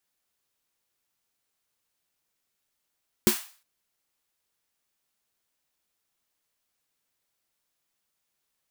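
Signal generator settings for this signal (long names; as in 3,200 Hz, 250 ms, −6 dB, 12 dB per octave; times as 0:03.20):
synth snare length 0.36 s, tones 220 Hz, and 360 Hz, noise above 810 Hz, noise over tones −6 dB, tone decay 0.11 s, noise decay 0.41 s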